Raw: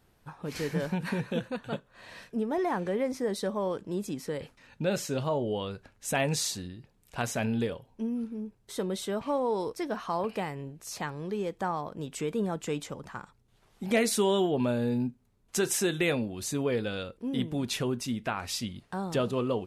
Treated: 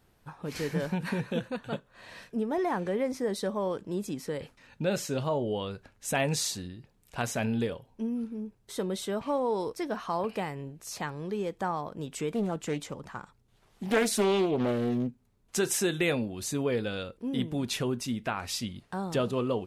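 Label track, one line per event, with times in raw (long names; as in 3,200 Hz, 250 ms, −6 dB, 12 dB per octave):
12.320000	15.580000	highs frequency-modulated by the lows depth 0.41 ms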